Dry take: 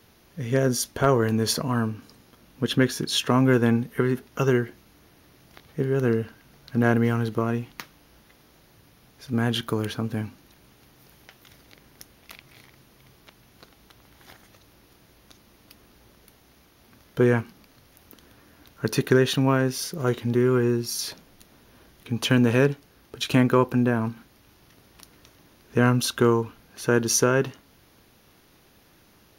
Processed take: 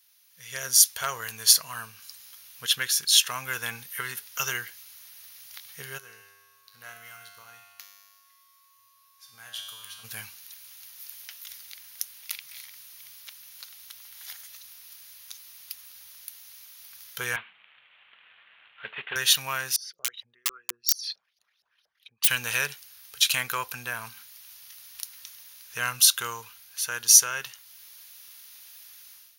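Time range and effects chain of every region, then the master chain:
5.97–10.03 s: feedback comb 100 Hz, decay 1.5 s, mix 90% + whistle 1.1 kHz -59 dBFS
17.36–19.16 s: CVSD coder 16 kbps + high-pass 200 Hz
19.76–22.28 s: resonances exaggerated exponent 2 + LFO band-pass saw up 4.3 Hz 580–5800 Hz + integer overflow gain 27 dB
whole clip: amplifier tone stack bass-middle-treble 10-0-10; level rider gain up to 14.5 dB; tilt EQ +3.5 dB/octave; trim -10.5 dB

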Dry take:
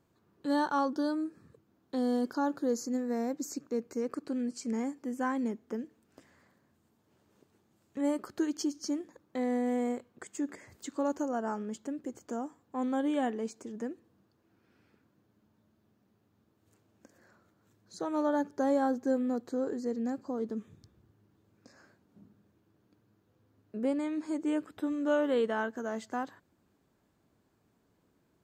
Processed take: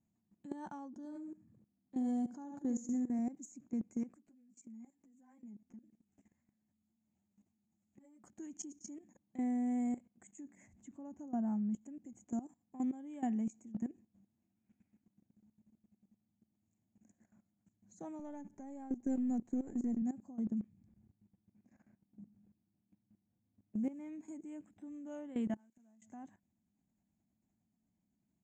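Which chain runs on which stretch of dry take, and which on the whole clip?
0.89–3.19 s: feedback delay 71 ms, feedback 31%, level -8 dB + tape noise reduction on one side only decoder only
4.14–8.24 s: compression 2:1, threshold -54 dBFS + three-phase chorus
10.73–11.81 s: low-pass 2.4 kHz 6 dB/octave + bass shelf 120 Hz +10.5 dB
18.19–20.02 s: partial rectifier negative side -3 dB + three bands compressed up and down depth 70%
20.57–24.09 s: low-pass 3.5 kHz + short-mantissa float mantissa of 4-bit
25.54–26.02 s: zero-crossing glitches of -32 dBFS + inverted gate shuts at -31 dBFS, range -29 dB + treble shelf 6 kHz -6.5 dB
whole clip: FFT filter 150 Hz 0 dB, 210 Hz +11 dB, 440 Hz -26 dB, 740 Hz -11 dB, 1.3 kHz -25 dB, 2.2 kHz -12 dB, 4.7 kHz -30 dB, 6.9 kHz -3 dB, 11 kHz -29 dB; level held to a coarse grid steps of 16 dB; resonant low shelf 310 Hz -6.5 dB, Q 1.5; trim +5.5 dB

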